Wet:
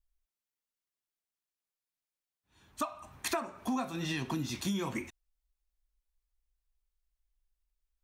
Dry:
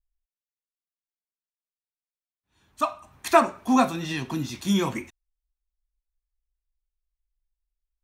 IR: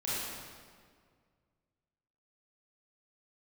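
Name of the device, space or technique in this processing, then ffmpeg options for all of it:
serial compression, peaks first: -af "acompressor=threshold=-28dB:ratio=6,acompressor=threshold=-37dB:ratio=1.5,volume=1dB"

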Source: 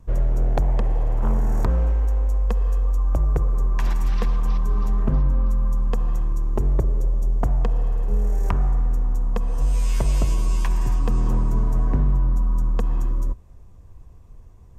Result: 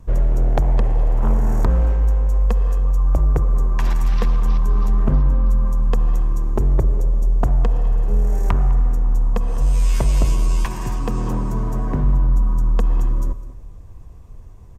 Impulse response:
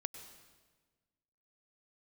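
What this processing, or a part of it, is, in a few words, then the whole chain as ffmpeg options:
saturated reverb return: -filter_complex "[0:a]asettb=1/sr,asplit=3[link_01][link_02][link_03];[link_01]atrim=end=10.654[link_04];[link_02]atrim=start=10.65:end=12.04,asetpts=PTS-STARTPTS,afade=type=in:duration=0.004:curve=qsin,afade=type=out:start_time=1.386:duration=0.004:curve=qsin,highpass=frequency=100:poles=1[link_05];[link_03]atrim=start=12.036[link_06];[link_04][link_05]acrossfade=duration=0.004:curve1=hsin:curve2=qsin[link_07];[link_07][link_06]acrossfade=duration=0.004:curve1=qsin:curve2=hsin,asplit=2[link_08][link_09];[link_09]adelay=204.1,volume=-17dB,highshelf=frequency=4000:gain=-4.59[link_10];[link_08][link_10]amix=inputs=2:normalize=0,asplit=2[link_11][link_12];[1:a]atrim=start_sample=2205[link_13];[link_12][link_13]afir=irnorm=-1:irlink=0,asoftclip=type=tanh:threshold=-23.5dB,volume=-3dB[link_14];[link_11][link_14]amix=inputs=2:normalize=0,volume=1.5dB"

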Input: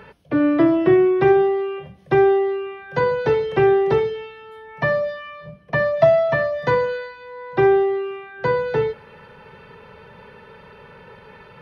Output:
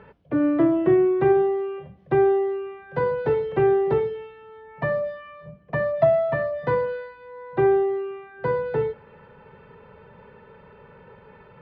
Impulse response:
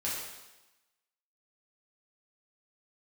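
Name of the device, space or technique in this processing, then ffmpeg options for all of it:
phone in a pocket: -af "lowpass=4000,highshelf=frequency=2000:gain=-11,volume=-3dB"

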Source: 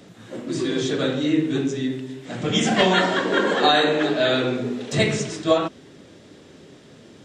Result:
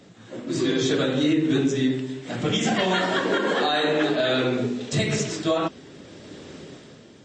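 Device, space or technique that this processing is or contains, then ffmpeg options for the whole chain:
low-bitrate web radio: -filter_complex "[0:a]asplit=3[link_01][link_02][link_03];[link_01]afade=type=out:start_time=4.65:duration=0.02[link_04];[link_02]equalizer=frequency=900:width=0.33:gain=-5.5,afade=type=in:start_time=4.65:duration=0.02,afade=type=out:start_time=5.11:duration=0.02[link_05];[link_03]afade=type=in:start_time=5.11:duration=0.02[link_06];[link_04][link_05][link_06]amix=inputs=3:normalize=0,dynaudnorm=framelen=120:gausssize=11:maxgain=11dB,alimiter=limit=-9.5dB:level=0:latency=1:release=140,volume=-3dB" -ar 22050 -c:a libmp3lame -b:a 32k

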